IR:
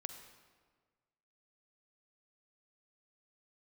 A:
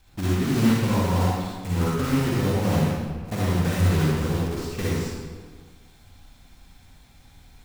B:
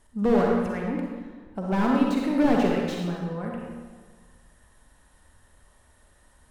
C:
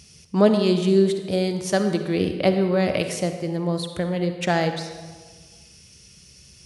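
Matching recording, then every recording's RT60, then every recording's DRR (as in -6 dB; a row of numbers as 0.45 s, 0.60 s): C; 1.5 s, 1.5 s, 1.5 s; -7.0 dB, -1.5 dB, 7.0 dB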